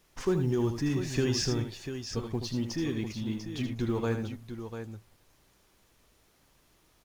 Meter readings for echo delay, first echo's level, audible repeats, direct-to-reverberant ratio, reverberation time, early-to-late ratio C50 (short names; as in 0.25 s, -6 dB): 78 ms, -8.0 dB, 2, none, none, none